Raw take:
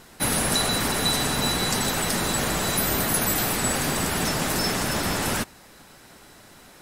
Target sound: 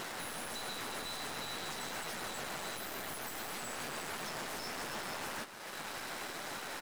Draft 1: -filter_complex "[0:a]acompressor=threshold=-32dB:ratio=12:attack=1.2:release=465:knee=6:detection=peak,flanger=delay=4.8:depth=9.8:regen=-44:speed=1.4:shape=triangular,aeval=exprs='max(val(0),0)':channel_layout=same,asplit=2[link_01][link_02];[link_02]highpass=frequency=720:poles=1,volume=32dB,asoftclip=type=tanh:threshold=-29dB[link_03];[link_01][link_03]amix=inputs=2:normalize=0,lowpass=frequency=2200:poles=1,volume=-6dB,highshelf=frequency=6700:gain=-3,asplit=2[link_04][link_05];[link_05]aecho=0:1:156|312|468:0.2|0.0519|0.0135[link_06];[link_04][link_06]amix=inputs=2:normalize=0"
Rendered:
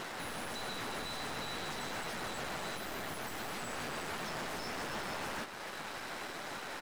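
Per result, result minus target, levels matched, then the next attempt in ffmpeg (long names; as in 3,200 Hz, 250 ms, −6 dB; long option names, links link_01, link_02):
downward compressor: peak gain reduction −8 dB; 8,000 Hz band −3.5 dB
-filter_complex "[0:a]acompressor=threshold=-40.5dB:ratio=12:attack=1.2:release=465:knee=6:detection=peak,flanger=delay=4.8:depth=9.8:regen=-44:speed=1.4:shape=triangular,aeval=exprs='max(val(0),0)':channel_layout=same,asplit=2[link_01][link_02];[link_02]highpass=frequency=720:poles=1,volume=32dB,asoftclip=type=tanh:threshold=-29dB[link_03];[link_01][link_03]amix=inputs=2:normalize=0,lowpass=frequency=2200:poles=1,volume=-6dB,highshelf=frequency=6700:gain=-3,asplit=2[link_04][link_05];[link_05]aecho=0:1:156|312|468:0.2|0.0519|0.0135[link_06];[link_04][link_06]amix=inputs=2:normalize=0"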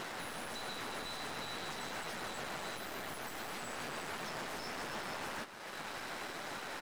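8,000 Hz band −3.5 dB
-filter_complex "[0:a]acompressor=threshold=-40.5dB:ratio=12:attack=1.2:release=465:knee=6:detection=peak,flanger=delay=4.8:depth=9.8:regen=-44:speed=1.4:shape=triangular,aeval=exprs='max(val(0),0)':channel_layout=same,asplit=2[link_01][link_02];[link_02]highpass=frequency=720:poles=1,volume=32dB,asoftclip=type=tanh:threshold=-29dB[link_03];[link_01][link_03]amix=inputs=2:normalize=0,lowpass=frequency=2200:poles=1,volume=-6dB,highshelf=frequency=6700:gain=5.5,asplit=2[link_04][link_05];[link_05]aecho=0:1:156|312|468:0.2|0.0519|0.0135[link_06];[link_04][link_06]amix=inputs=2:normalize=0"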